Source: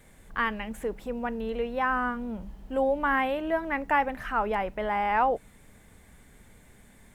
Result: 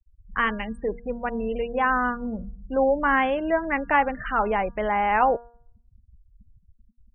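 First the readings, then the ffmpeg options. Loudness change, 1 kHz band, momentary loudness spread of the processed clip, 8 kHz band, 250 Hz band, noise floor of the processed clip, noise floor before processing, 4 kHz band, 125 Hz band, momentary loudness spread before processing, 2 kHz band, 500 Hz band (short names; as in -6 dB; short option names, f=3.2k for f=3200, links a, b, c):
+4.0 dB, +4.0 dB, 10 LU, n/a, +4.0 dB, -62 dBFS, -56 dBFS, +2.5 dB, +4.0 dB, 9 LU, +4.5 dB, +4.5 dB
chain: -af "bandreject=f=900:w=23,afftfilt=real='re*gte(hypot(re,im),0.0158)':imag='im*gte(hypot(re,im),0.0158)':win_size=1024:overlap=0.75,bandreject=f=236.5:t=h:w=4,bandreject=f=473:t=h:w=4,bandreject=f=709.5:t=h:w=4,bandreject=f=946:t=h:w=4,bandreject=f=1.1825k:t=h:w=4,bandreject=f=1.419k:t=h:w=4,bandreject=f=1.6555k:t=h:w=4,volume=4.5dB"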